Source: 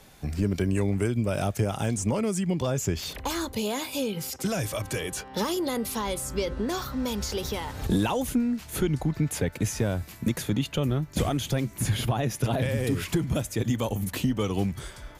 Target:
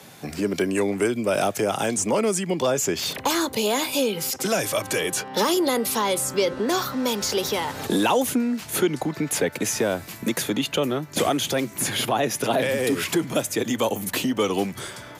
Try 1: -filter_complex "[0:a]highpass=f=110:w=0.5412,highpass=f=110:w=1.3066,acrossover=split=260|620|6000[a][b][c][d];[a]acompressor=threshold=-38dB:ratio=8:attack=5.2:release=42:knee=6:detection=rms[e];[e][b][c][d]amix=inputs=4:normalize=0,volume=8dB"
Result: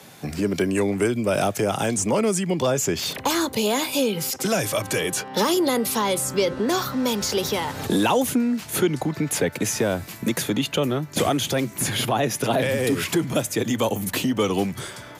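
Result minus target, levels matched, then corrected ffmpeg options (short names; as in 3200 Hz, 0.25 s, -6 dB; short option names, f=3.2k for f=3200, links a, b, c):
compressor: peak gain reduction -8 dB
-filter_complex "[0:a]highpass=f=110:w=0.5412,highpass=f=110:w=1.3066,acrossover=split=260|620|6000[a][b][c][d];[a]acompressor=threshold=-47dB:ratio=8:attack=5.2:release=42:knee=6:detection=rms[e];[e][b][c][d]amix=inputs=4:normalize=0,volume=8dB"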